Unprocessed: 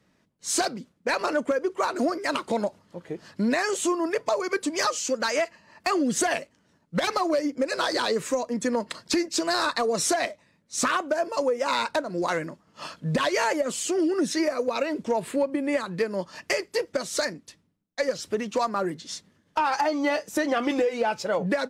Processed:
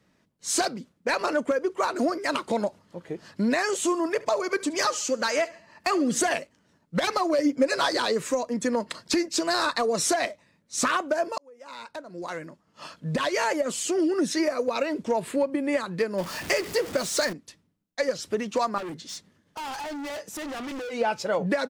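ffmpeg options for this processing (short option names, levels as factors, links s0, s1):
-filter_complex "[0:a]asplit=3[s0][s1][s2];[s0]afade=t=out:st=3.86:d=0.02[s3];[s1]aecho=1:1:72|144|216:0.1|0.042|0.0176,afade=t=in:st=3.86:d=0.02,afade=t=out:st=6.32:d=0.02[s4];[s2]afade=t=in:st=6.32:d=0.02[s5];[s3][s4][s5]amix=inputs=3:normalize=0,asettb=1/sr,asplit=3[s6][s7][s8];[s6]atrim=end=7.384[s9];[s7]atrim=start=7.38:end=7.89,asetpts=PTS-STARTPTS,afade=t=in:d=0.004:c=qsin,afade=t=out:st=0.506:d=0.004:c=qsin,aecho=1:1:7.2:0.83,atrim=end_sample=22491[s10];[s8]atrim=start=7.886[s11];[s9][s10]acrossfade=d=0.004:c1=hsin:c2=qsin[s12];[s12][s11]acrossfade=d=0.004:c1=qsin:c2=hsin,asettb=1/sr,asplit=3[s13][s14][s15];[s13]atrim=end=16.184[s16];[s14]atrim=start=16.18:end=17.33,asetpts=PTS-STARTPTS,afade=t=in:d=0.004:c=qsin,afade=t=out:st=1.146:d=0.004:c=qsin,aeval=exprs='val(0)+0.5*0.0251*sgn(val(0))':c=same[s17];[s15]atrim=start=17.326[s18];[s16][s17]acrossfade=d=0.004:c1=hsin:c2=qsin[s19];[s19][s18]acrossfade=d=0.004:c1=qsin:c2=hsin,asettb=1/sr,asplit=3[s20][s21][s22];[s20]atrim=end=18.784[s23];[s21]atrim=start=18.78:end=20.91,asetpts=PTS-STARTPTS,afade=t=in:d=0.004:c=qsin,afade=t=out:st=2.126:d=0.004:c=qsin,volume=44.7,asoftclip=hard,volume=0.0224[s24];[s22]atrim=start=20.906[s25];[s23][s24]acrossfade=d=0.004:c1=hsin:c2=qsin[s26];[s26][s25]acrossfade=d=0.004:c1=qsin:c2=hsin,asplit=2[s27][s28];[s27]atrim=end=11.38,asetpts=PTS-STARTPTS,afade=t=out:st=11.376:d=0.004:c=hsin[s29];[s28]atrim=start=11.38,asetpts=PTS-STARTPTS,afade=t=in:d=2.33[s30];[s29][s30]concat=n=2:v=0:a=1"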